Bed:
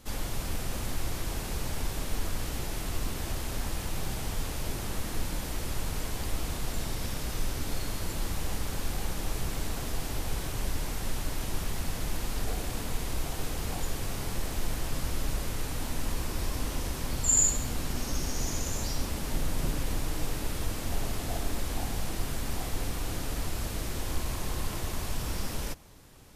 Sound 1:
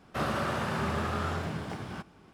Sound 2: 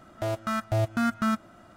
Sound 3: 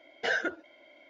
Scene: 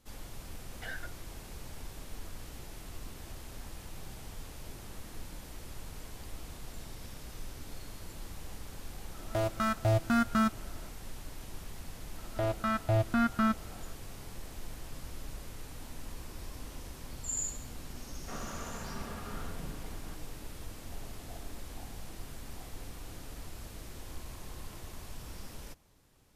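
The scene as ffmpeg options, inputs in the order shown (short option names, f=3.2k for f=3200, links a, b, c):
-filter_complex "[2:a]asplit=2[a][b];[0:a]volume=-12dB[c];[3:a]highpass=700,lowpass=5.7k[d];[b]lowpass=3.9k[e];[1:a]aecho=1:1:4.3:0.36[f];[d]atrim=end=1.09,asetpts=PTS-STARTPTS,volume=-13dB,afade=t=in:d=0.004:c=hsin,afade=t=out:st=1.086:d=0.004:c=hsin,adelay=580[g];[a]atrim=end=1.76,asetpts=PTS-STARTPTS,volume=-1.5dB,afade=t=in:d=0.004:c=hsin,afade=t=out:st=1.756:d=0.004:c=hsin,adelay=9130[h];[e]atrim=end=1.76,asetpts=PTS-STARTPTS,volume=-2dB,afade=t=in:d=0.004:c=hsin,afade=t=out:st=1.756:d=0.004:c=hsin,adelay=12170[i];[f]atrim=end=2.33,asetpts=PTS-STARTPTS,volume=-13dB,afade=t=in:d=0.004:c=hsin,afade=t=out:st=2.326:d=0.004:c=hsin,adelay=18130[j];[c][g][h][i][j]amix=inputs=5:normalize=0"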